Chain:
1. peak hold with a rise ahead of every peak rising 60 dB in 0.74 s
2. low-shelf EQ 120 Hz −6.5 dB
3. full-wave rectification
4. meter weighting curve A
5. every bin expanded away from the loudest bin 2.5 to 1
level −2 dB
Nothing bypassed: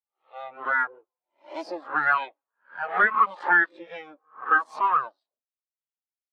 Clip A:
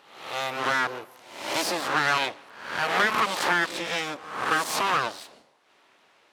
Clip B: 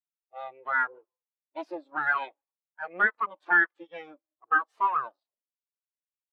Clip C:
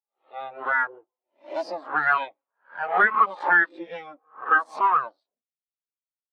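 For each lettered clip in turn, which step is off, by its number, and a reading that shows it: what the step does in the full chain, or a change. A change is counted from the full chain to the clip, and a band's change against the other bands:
5, 4 kHz band +17.5 dB
1, 1 kHz band −2.0 dB
2, 500 Hz band +2.5 dB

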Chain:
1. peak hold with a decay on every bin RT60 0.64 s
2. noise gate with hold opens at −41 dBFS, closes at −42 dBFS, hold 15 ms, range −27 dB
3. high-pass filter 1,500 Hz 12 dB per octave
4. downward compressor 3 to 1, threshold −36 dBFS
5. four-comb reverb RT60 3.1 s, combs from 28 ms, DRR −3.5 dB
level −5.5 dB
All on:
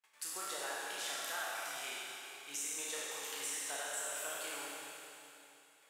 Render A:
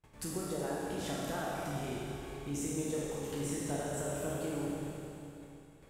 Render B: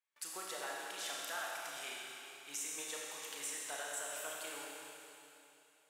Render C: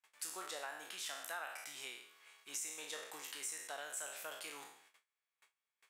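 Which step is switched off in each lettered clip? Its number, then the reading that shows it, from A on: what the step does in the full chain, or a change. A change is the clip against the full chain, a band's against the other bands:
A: 3, 250 Hz band +24.5 dB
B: 1, 250 Hz band +1.5 dB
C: 5, change in integrated loudness −4.5 LU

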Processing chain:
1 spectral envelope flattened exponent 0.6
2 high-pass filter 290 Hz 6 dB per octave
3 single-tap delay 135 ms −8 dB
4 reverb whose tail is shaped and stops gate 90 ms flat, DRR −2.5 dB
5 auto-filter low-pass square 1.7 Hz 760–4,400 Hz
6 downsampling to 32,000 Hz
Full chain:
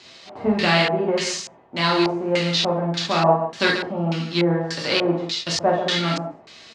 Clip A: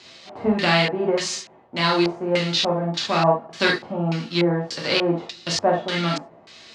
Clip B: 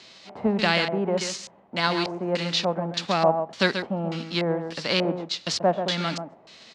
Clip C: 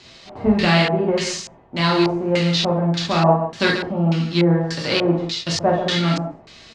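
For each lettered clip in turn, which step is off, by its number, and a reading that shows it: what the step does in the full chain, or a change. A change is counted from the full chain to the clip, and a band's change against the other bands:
3, change in momentary loudness spread +2 LU
4, change in momentary loudness spread +2 LU
2, change in integrated loudness +2.0 LU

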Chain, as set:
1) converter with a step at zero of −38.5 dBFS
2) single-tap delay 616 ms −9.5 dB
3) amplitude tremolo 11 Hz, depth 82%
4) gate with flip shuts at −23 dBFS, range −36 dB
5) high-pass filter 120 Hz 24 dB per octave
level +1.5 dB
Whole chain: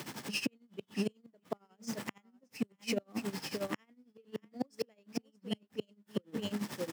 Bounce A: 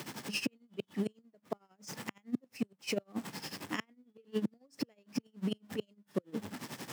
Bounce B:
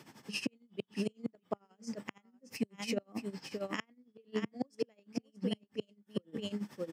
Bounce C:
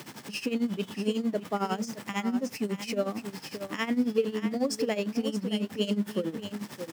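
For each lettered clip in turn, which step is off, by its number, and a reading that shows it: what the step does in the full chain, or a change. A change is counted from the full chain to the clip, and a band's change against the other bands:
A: 2, change in momentary loudness spread −1 LU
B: 1, distortion level −18 dB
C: 4, change in crest factor −4.5 dB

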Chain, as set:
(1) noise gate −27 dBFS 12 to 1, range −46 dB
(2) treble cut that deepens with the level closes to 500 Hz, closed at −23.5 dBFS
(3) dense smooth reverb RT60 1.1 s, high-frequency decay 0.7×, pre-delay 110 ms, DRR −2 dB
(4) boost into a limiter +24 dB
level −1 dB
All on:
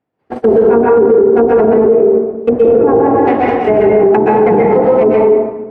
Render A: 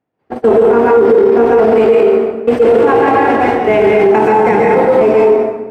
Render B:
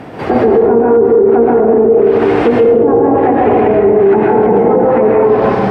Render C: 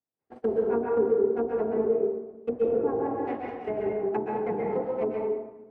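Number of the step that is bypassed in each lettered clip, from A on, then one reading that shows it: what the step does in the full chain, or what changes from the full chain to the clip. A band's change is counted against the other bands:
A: 2, 2 kHz band +7.0 dB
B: 1, change in momentary loudness spread −2 LU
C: 4, change in crest factor +7.0 dB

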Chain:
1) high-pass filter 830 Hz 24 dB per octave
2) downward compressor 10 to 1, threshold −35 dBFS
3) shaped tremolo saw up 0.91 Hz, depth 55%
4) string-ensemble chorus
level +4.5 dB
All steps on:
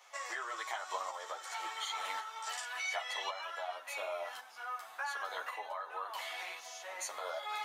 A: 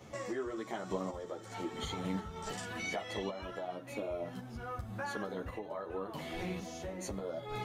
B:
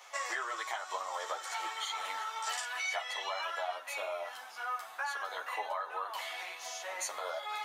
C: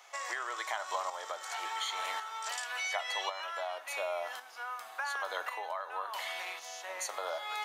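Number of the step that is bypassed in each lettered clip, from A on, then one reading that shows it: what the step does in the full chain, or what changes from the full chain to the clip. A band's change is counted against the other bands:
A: 1, 500 Hz band +10.5 dB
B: 3, change in integrated loudness +2.5 LU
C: 4, change in integrated loudness +3.0 LU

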